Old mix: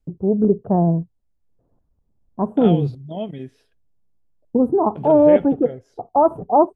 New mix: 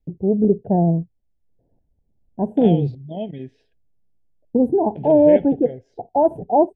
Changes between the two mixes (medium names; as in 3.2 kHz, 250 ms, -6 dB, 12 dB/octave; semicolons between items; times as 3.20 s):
second voice: add distance through air 120 m; master: add Butterworth band-stop 1.2 kHz, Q 1.4